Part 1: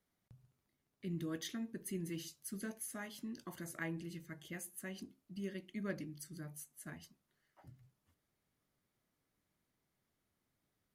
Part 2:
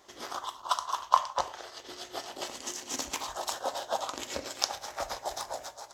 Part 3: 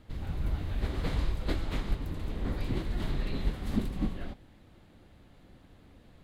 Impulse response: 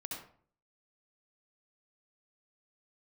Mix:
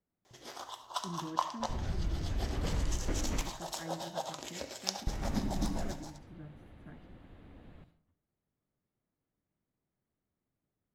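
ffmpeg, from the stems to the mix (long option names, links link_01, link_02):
-filter_complex "[0:a]tiltshelf=frequency=1400:gain=6.5,volume=-8dB,asplit=2[link_01][link_02];[link_02]volume=-17.5dB[link_03];[1:a]equalizer=frequency=1200:width_type=o:width=0.55:gain=-6.5,adelay=250,volume=-7dB,asplit=2[link_04][link_05];[link_05]volume=-8dB[link_06];[2:a]adelay=1600,volume=0dB,asplit=3[link_07][link_08][link_09];[link_07]atrim=end=3.41,asetpts=PTS-STARTPTS,afade=type=out:start_time=3.406:duration=0.004:curve=hsin[link_10];[link_08]atrim=start=3.41:end=5.07,asetpts=PTS-STARTPTS,volume=0[link_11];[link_09]atrim=start=5.07,asetpts=PTS-STARTPTS,afade=type=in:duration=0.004:curve=hsin[link_12];[link_10][link_11][link_12]concat=n=3:v=0:a=1,asplit=2[link_13][link_14];[link_14]volume=-7.5dB[link_15];[link_01][link_13]amix=inputs=2:normalize=0,lowpass=frequency=3900:width=0.5412,lowpass=frequency=3900:width=1.3066,acompressor=threshold=-34dB:ratio=6,volume=0dB[link_16];[3:a]atrim=start_sample=2205[link_17];[link_03][link_06][link_15]amix=inputs=3:normalize=0[link_18];[link_18][link_17]afir=irnorm=-1:irlink=0[link_19];[link_04][link_16][link_19]amix=inputs=3:normalize=0"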